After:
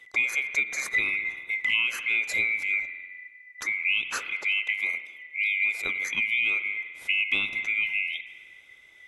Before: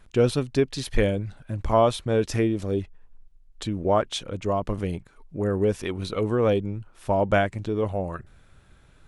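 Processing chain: band-swap scrambler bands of 2000 Hz; spring tank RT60 1.4 s, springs 49 ms, chirp 65 ms, DRR 12 dB; compressor 6:1, threshold -22 dBFS, peak gain reduction 8.5 dB; 1.25–1.83 bell 960 Hz +11 dB 0.46 oct; 4.33–5.82 HPF 330 Hz 12 dB/oct

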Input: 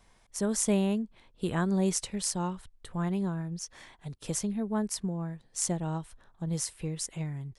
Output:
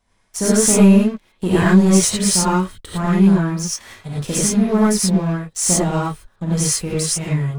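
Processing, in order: sample leveller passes 3; non-linear reverb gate 0.13 s rising, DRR -7.5 dB; gain -1.5 dB

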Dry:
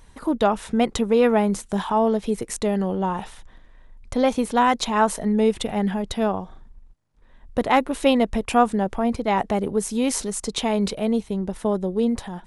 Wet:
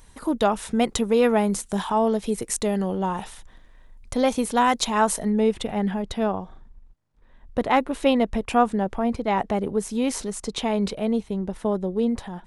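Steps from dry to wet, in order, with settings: high shelf 5400 Hz +8 dB, from 5.3 s -5.5 dB; gain -1.5 dB

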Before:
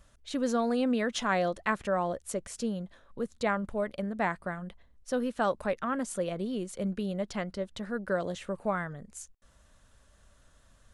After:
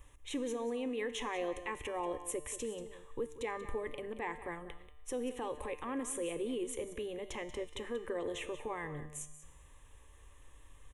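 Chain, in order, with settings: dynamic EQ 1200 Hz, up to -6 dB, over -43 dBFS, Q 1.3; limiter -30 dBFS, peak gain reduction 11.5 dB; fixed phaser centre 960 Hz, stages 8; resonator 150 Hz, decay 1.3 s, mix 70%; on a send: echo 0.185 s -13.5 dB; on the sum: gain +14.5 dB

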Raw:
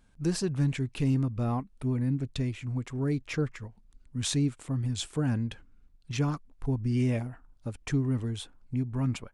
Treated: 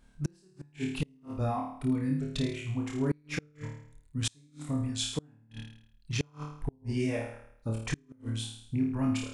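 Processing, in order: reverb removal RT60 1.4 s; flutter echo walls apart 4.6 m, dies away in 0.65 s; flipped gate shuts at -19 dBFS, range -34 dB

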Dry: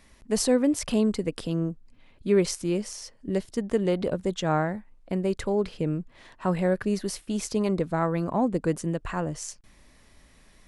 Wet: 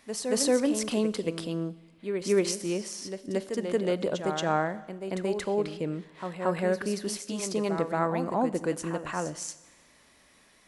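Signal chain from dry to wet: HPF 340 Hz 6 dB/oct; on a send: reverse echo 0.228 s -7.5 dB; on the sum: Schroeder reverb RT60 1.2 s, combs from 30 ms, DRR 16.5 dB

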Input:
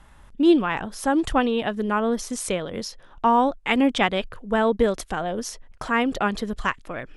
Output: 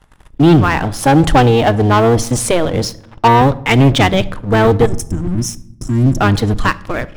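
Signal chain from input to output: octaver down 1 oct, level +3 dB; 0.84–3.28 bell 750 Hz +6.5 dB 1 oct; 4.86–6.18 spectral gain 380–5100 Hz -27 dB; sample leveller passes 3; shoebox room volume 2000 m³, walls furnished, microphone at 0.5 m

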